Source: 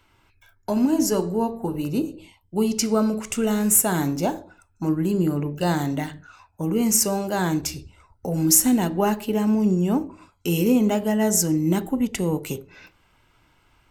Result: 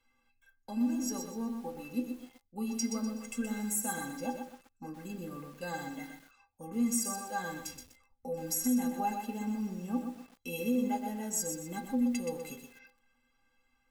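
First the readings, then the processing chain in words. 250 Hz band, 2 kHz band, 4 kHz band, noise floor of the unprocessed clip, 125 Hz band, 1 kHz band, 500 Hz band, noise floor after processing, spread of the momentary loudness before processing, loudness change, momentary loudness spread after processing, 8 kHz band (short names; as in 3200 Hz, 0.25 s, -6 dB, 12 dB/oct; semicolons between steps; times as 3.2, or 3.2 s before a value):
-12.0 dB, -9.5 dB, -13.0 dB, -62 dBFS, -20.0 dB, -9.5 dB, -16.0 dB, -75 dBFS, 13 LU, -13.0 dB, 15 LU, -13.5 dB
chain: metallic resonator 240 Hz, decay 0.24 s, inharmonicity 0.03; limiter -22.5 dBFS, peak gain reduction 8.5 dB; lo-fi delay 0.124 s, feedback 35%, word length 9-bit, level -6 dB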